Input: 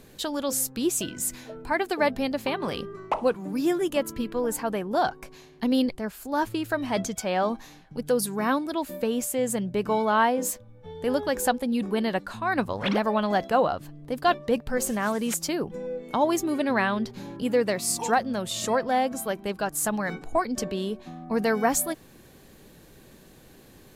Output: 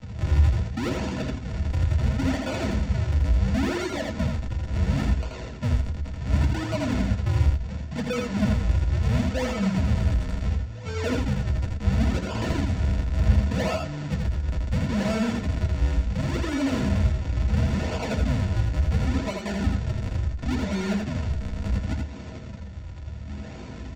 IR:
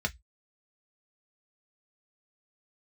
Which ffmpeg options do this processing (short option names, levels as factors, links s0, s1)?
-filter_complex "[0:a]highshelf=f=4300:g=11.5,asplit=2[s0][s1];[s1]acompressor=threshold=0.0224:ratio=6,volume=0.75[s2];[s0][s2]amix=inputs=2:normalize=0,alimiter=limit=0.133:level=0:latency=1:release=160,aresample=16000,acrusher=samples=41:mix=1:aa=0.000001:lfo=1:lforange=65.6:lforate=0.71,aresample=44100,asoftclip=type=tanh:threshold=0.0316,aecho=1:1:82:0.668[s3];[1:a]atrim=start_sample=2205[s4];[s3][s4]afir=irnorm=-1:irlink=0,volume=0.891"